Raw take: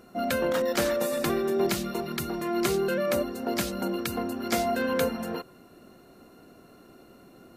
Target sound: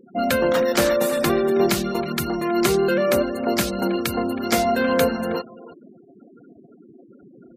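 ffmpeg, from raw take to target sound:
-filter_complex "[0:a]bandreject=f=322.5:t=h:w=4,bandreject=f=645:t=h:w=4,bandreject=f=967.5:t=h:w=4,bandreject=f=1.29k:t=h:w=4,bandreject=f=1.6125k:t=h:w=4,bandreject=f=1.935k:t=h:w=4,bandreject=f=2.2575k:t=h:w=4,bandreject=f=2.58k:t=h:w=4,bandreject=f=2.9025k:t=h:w=4,bandreject=f=3.225k:t=h:w=4,bandreject=f=3.5475k:t=h:w=4,asplit=2[a][b];[b]adelay=320,highpass=300,lowpass=3.4k,asoftclip=type=hard:threshold=-21dB,volume=-13dB[c];[a][c]amix=inputs=2:normalize=0,afftfilt=real='re*gte(hypot(re,im),0.00891)':imag='im*gte(hypot(re,im),0.00891)':win_size=1024:overlap=0.75,volume=7dB"

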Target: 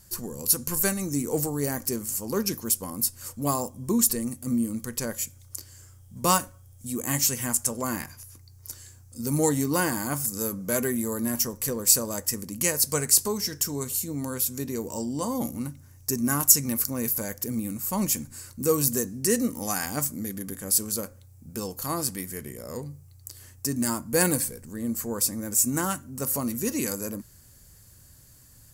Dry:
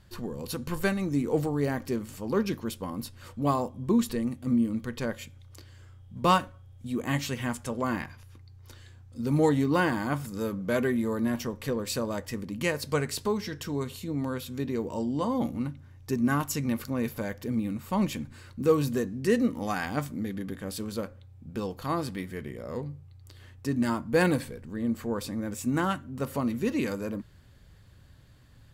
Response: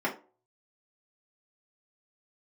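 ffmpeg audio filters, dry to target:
-af "aexciter=amount=6.8:drive=7.7:freq=5.2k,volume=-1dB"

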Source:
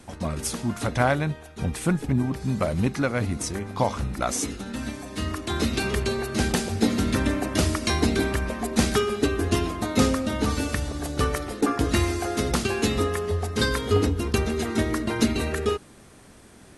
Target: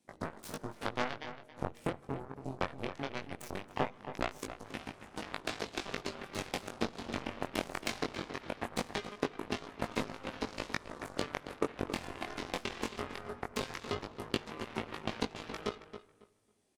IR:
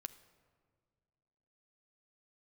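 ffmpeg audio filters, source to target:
-filter_complex "[0:a]highpass=f=500:p=1,afwtdn=0.0112,acrossover=split=2600[a][b];[b]acompressor=threshold=-42dB:ratio=4:attack=1:release=60[c];[a][c]amix=inputs=2:normalize=0,equalizer=f=1.4k:w=1.8:g=-11,acompressor=threshold=-39dB:ratio=8,aeval=exprs='0.0422*(cos(1*acos(clip(val(0)/0.0422,-1,1)))-cos(1*PI/2))+0.015*(cos(3*acos(clip(val(0)/0.0422,-1,1)))-cos(3*PI/2))':c=same,asoftclip=type=tanh:threshold=-30.5dB,flanger=delay=18.5:depth=3.6:speed=0.2,asplit=2[d][e];[e]adelay=274,lowpass=f=3.1k:p=1,volume=-11dB,asplit=2[f][g];[g]adelay=274,lowpass=f=3.1k:p=1,volume=0.21,asplit=2[h][i];[i]adelay=274,lowpass=f=3.1k:p=1,volume=0.21[j];[d][f][h][j]amix=inputs=4:normalize=0,asplit=2[k][l];[1:a]atrim=start_sample=2205[m];[l][m]afir=irnorm=-1:irlink=0,volume=-1.5dB[n];[k][n]amix=inputs=2:normalize=0,volume=16.5dB"

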